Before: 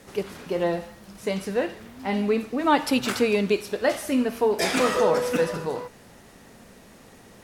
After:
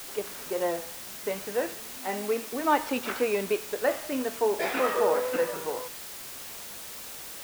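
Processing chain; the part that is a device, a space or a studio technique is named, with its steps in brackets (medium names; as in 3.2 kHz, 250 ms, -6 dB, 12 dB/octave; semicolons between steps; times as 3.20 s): wax cylinder (band-pass 350–2400 Hz; wow and flutter; white noise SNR 11 dB); 1.98–2.53 s: high-pass 160 Hz 12 dB/octave; trim -2.5 dB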